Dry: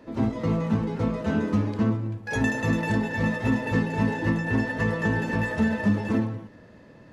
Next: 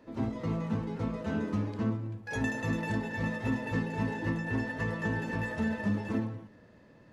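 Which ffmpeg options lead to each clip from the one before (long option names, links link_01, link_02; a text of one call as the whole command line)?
ffmpeg -i in.wav -af "bandreject=frequency=71.22:width_type=h:width=4,bandreject=frequency=142.44:width_type=h:width=4,bandreject=frequency=213.66:width_type=h:width=4,bandreject=frequency=284.88:width_type=h:width=4,bandreject=frequency=356.1:width_type=h:width=4,bandreject=frequency=427.32:width_type=h:width=4,bandreject=frequency=498.54:width_type=h:width=4,bandreject=frequency=569.76:width_type=h:width=4,bandreject=frequency=640.98:width_type=h:width=4,bandreject=frequency=712.2:width_type=h:width=4,volume=-7dB" out.wav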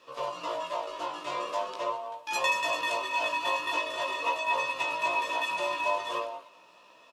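ffmpeg -i in.wav -af "firequalizer=gain_entry='entry(420,0);entry(1000,-23);entry(1800,13)':delay=0.05:min_phase=1,aeval=exprs='val(0)*sin(2*PI*800*n/s)':channel_layout=same,flanger=delay=15:depth=4.9:speed=0.42,volume=4dB" out.wav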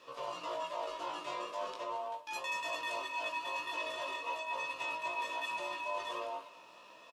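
ffmpeg -i in.wav -filter_complex "[0:a]areverse,acompressor=threshold=-36dB:ratio=6,areverse,asplit=2[link_01][link_02];[link_02]adelay=25,volume=-11dB[link_03];[link_01][link_03]amix=inputs=2:normalize=0" out.wav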